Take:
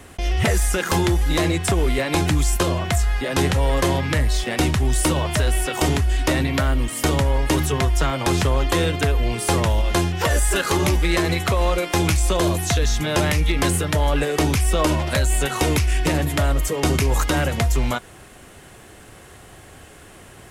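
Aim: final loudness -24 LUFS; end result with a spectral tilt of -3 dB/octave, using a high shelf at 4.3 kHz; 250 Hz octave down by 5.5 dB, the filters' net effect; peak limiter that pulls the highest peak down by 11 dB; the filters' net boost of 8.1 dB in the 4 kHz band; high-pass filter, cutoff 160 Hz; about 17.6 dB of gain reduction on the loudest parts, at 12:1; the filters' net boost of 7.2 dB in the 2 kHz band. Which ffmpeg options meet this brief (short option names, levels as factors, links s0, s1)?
-af "highpass=160,equalizer=f=250:t=o:g=-7.5,equalizer=f=2000:t=o:g=6.5,equalizer=f=4000:t=o:g=6,highshelf=f=4300:g=4,acompressor=threshold=0.0224:ratio=12,volume=4.47,alimiter=limit=0.188:level=0:latency=1"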